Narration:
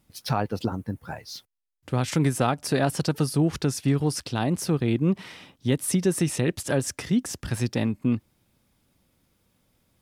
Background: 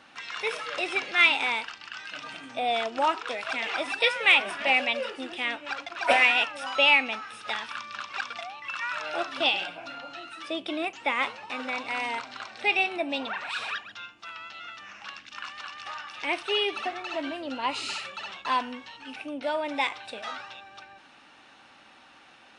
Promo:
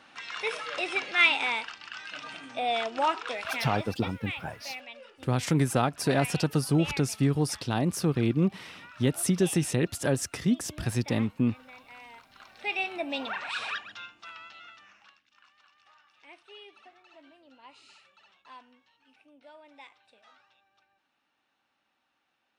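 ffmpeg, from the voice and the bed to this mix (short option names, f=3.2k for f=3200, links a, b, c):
-filter_complex "[0:a]adelay=3350,volume=-2dB[a];[1:a]volume=15.5dB,afade=t=out:st=3.54:d=0.41:silence=0.149624,afade=t=in:st=12.27:d=1.04:silence=0.141254,afade=t=out:st=13.92:d=1.27:silence=0.0794328[b];[a][b]amix=inputs=2:normalize=0"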